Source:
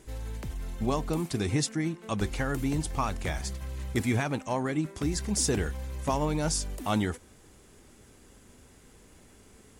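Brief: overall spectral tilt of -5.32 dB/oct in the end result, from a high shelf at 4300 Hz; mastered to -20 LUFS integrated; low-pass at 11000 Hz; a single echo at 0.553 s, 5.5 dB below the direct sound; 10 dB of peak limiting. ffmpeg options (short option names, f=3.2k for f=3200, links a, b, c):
-af "lowpass=11k,highshelf=f=4.3k:g=-5.5,alimiter=level_in=0.5dB:limit=-24dB:level=0:latency=1,volume=-0.5dB,aecho=1:1:553:0.531,volume=14.5dB"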